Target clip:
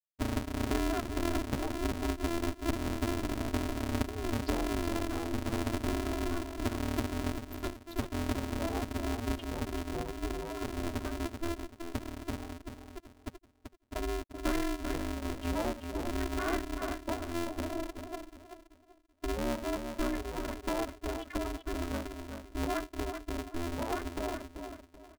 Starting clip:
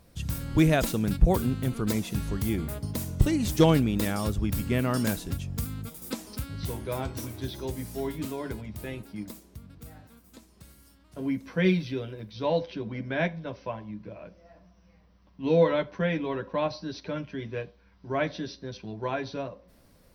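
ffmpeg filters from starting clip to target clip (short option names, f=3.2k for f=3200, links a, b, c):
-filter_complex "[0:a]acompressor=threshold=-42dB:ratio=5,aecho=1:1:1.3:0.63,asetrate=35280,aresample=44100,highpass=86,afftfilt=real='re*gte(hypot(re,im),0.0224)':imag='im*gte(hypot(re,im),0.0224)':win_size=1024:overlap=0.75,lowshelf=f=160:g=5,asplit=2[a][b];[b]aecho=0:1:384|768|1152|1536:0.447|0.13|0.0376|0.0109[c];[a][c]amix=inputs=2:normalize=0,aeval=exprs='val(0)*sgn(sin(2*PI*170*n/s))':c=same,volume=8dB"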